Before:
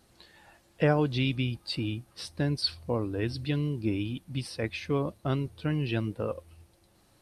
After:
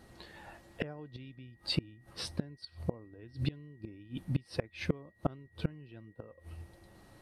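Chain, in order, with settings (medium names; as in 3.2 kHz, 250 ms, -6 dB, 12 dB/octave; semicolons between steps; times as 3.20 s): treble shelf 2.2 kHz -8.5 dB; inverted gate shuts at -25 dBFS, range -28 dB; whistle 1.9 kHz -75 dBFS; trim +7 dB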